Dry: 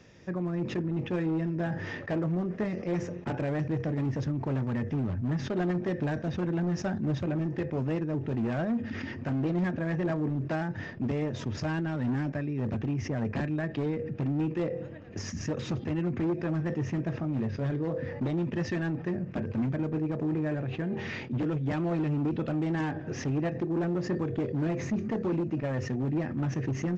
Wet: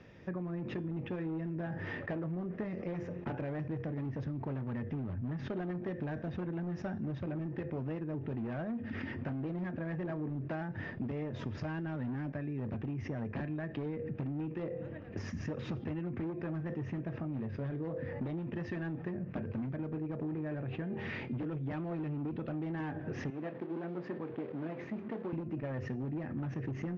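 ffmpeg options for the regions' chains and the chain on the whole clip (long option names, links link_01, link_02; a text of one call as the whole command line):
ffmpeg -i in.wav -filter_complex "[0:a]asettb=1/sr,asplit=3[link_01][link_02][link_03];[link_01]atrim=end=23.304[link_04];[link_02]atrim=start=23.3:end=25.33,asetpts=PTS-STARTPTS,afade=type=in:duration=0.004:curve=qsin,afade=type=out:start_time=2.026:duration=0.004:curve=qsin,aeval=exprs='sgn(val(0))*max(abs(val(0))-0.00501,0)':channel_layout=same,highpass=210,lowpass=4400,flanger=delay=4:depth=6.5:regen=-77:speed=1.6:shape=sinusoidal[link_05];[link_03]atrim=start=25.326[link_06];[link_04][link_05]acrossfade=duration=0.004:curve1=hsin:curve2=qsin[link_07];[link_07][link_06]acrossfade=duration=0.004:curve1=qsin:curve2=hsin,acompressor=threshold=-35dB:ratio=5,lowpass=3000,bandreject=frequency=347.7:width_type=h:width=4,bandreject=frequency=695.4:width_type=h:width=4,bandreject=frequency=1043.1:width_type=h:width=4,bandreject=frequency=1390.8:width_type=h:width=4,bandreject=frequency=1738.5:width_type=h:width=4,bandreject=frequency=2086.2:width_type=h:width=4,bandreject=frequency=2433.9:width_type=h:width=4,bandreject=frequency=2781.6:width_type=h:width=4,bandreject=frequency=3129.3:width_type=h:width=4,bandreject=frequency=3477:width_type=h:width=4,bandreject=frequency=3824.7:width_type=h:width=4,bandreject=frequency=4172.4:width_type=h:width=4,bandreject=frequency=4520.1:width_type=h:width=4,bandreject=frequency=4867.8:width_type=h:width=4,bandreject=frequency=5215.5:width_type=h:width=4,bandreject=frequency=5563.2:width_type=h:width=4,bandreject=frequency=5910.9:width_type=h:width=4,bandreject=frequency=6258.6:width_type=h:width=4,bandreject=frequency=6606.3:width_type=h:width=4,bandreject=frequency=6954:width_type=h:width=4,bandreject=frequency=7301.7:width_type=h:width=4,bandreject=frequency=7649.4:width_type=h:width=4,bandreject=frequency=7997.1:width_type=h:width=4,bandreject=frequency=8344.8:width_type=h:width=4,bandreject=frequency=8692.5:width_type=h:width=4,bandreject=frequency=9040.2:width_type=h:width=4,bandreject=frequency=9387.9:width_type=h:width=4,bandreject=frequency=9735.6:width_type=h:width=4,bandreject=frequency=10083.3:width_type=h:width=4" out.wav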